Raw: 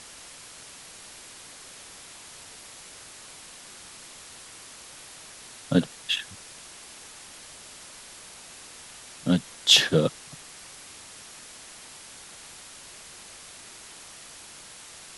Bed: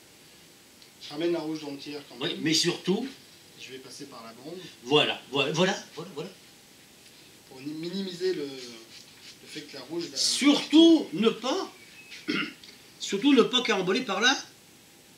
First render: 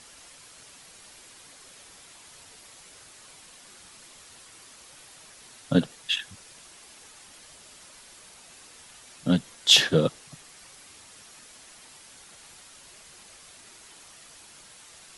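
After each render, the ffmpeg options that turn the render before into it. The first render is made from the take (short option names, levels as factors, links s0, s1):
-af "afftdn=nr=6:nf=-46"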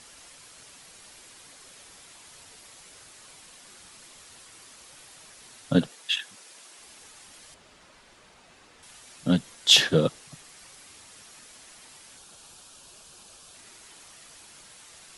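-filter_complex "[0:a]asettb=1/sr,asplit=3[s0][s1][s2];[s0]atrim=end=5.894[s3];[s1]atrim=start=5.89:end=6.79,asetpts=PTS-STARTPTS,afade=t=in:d=0.004:c=qsin,afade=t=out:st=0.896:d=0.004:c=qsin,highpass=280[s4];[s2]atrim=start=6.786[s5];[s3][s4]acrossfade=d=0.004:c1=hsin:c2=qsin[s6];[s6][s5]acrossfade=d=0.004:c1=qsin:c2=hsin,asettb=1/sr,asplit=3[s7][s8][s9];[s7]atrim=end=7.544[s10];[s8]atrim=start=7.54:end=8.83,asetpts=PTS-STARTPTS,afade=t=in:d=0.004:c=qsin,afade=t=out:st=1.286:d=0.004:c=qsin,aemphasis=mode=reproduction:type=75fm[s11];[s9]atrim=start=8.826[s12];[s10][s11]acrossfade=d=0.004:c1=hsin:c2=qsin[s13];[s13][s12]acrossfade=d=0.004:c1=qsin:c2=hsin,asettb=1/sr,asplit=3[s14][s15][s16];[s14]atrim=end=12.184[s17];[s15]atrim=start=12.18:end=13.55,asetpts=PTS-STARTPTS,afade=t=in:d=0.004:c=qsin,afade=t=out:st=1.366:d=0.004:c=qsin,equalizer=f=2000:w=4.9:g=-14[s18];[s16]atrim=start=13.546[s19];[s17][s18]acrossfade=d=0.004:c1=hsin:c2=qsin[s20];[s20][s19]acrossfade=d=0.004:c1=qsin:c2=hsin"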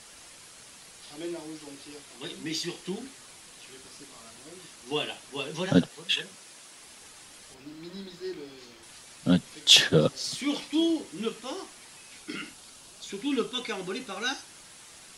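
-filter_complex "[1:a]volume=0.376[s0];[0:a][s0]amix=inputs=2:normalize=0"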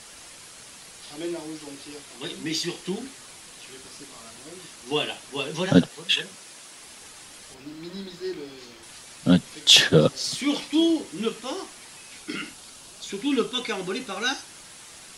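-af "volume=1.68,alimiter=limit=0.794:level=0:latency=1"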